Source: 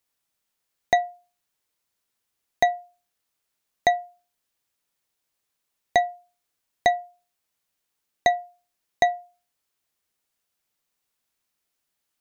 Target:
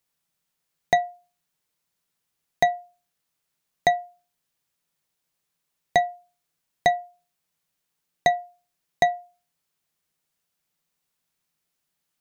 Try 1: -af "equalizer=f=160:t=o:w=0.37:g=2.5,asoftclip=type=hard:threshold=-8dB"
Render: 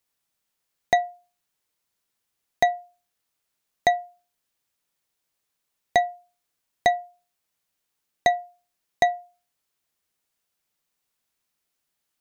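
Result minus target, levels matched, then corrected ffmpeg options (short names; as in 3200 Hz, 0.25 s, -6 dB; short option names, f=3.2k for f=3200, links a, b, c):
125 Hz band -4.5 dB
-af "equalizer=f=160:t=o:w=0.37:g=11.5,asoftclip=type=hard:threshold=-8dB"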